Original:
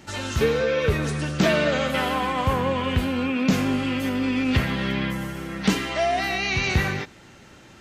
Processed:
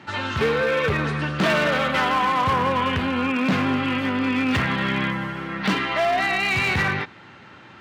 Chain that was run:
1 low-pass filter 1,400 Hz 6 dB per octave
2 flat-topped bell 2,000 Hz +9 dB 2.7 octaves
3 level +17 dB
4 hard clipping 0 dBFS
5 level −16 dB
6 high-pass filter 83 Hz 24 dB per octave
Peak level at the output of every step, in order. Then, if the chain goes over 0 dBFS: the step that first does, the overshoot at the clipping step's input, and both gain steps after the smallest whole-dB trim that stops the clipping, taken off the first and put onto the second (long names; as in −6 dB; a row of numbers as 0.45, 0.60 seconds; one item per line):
−10.5, −7.0, +10.0, 0.0, −16.0, −9.0 dBFS
step 3, 10.0 dB
step 3 +7 dB, step 5 −6 dB